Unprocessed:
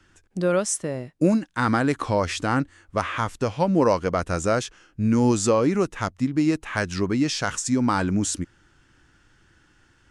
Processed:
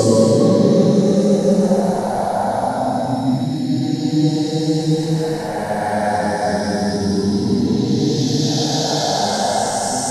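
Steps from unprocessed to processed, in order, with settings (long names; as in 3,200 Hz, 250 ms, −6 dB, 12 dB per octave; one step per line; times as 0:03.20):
spectral magnitudes quantised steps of 30 dB
drawn EQ curve 140 Hz 0 dB, 210 Hz +8 dB, 320 Hz −3 dB, 770 Hz +14 dB, 1,200 Hz −14 dB, 1,700 Hz −2 dB, 2,500 Hz −14 dB, 3,900 Hz +7 dB, 7,300 Hz 0 dB, 12,000 Hz +14 dB
extreme stretch with random phases 4.9×, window 0.50 s, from 0:05.53
mains-hum notches 50/100 Hz
level +4.5 dB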